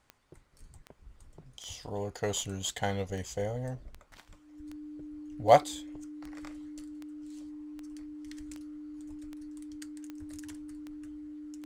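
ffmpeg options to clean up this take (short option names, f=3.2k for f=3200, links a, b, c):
-af "adeclick=t=4,bandreject=f=300:w=30"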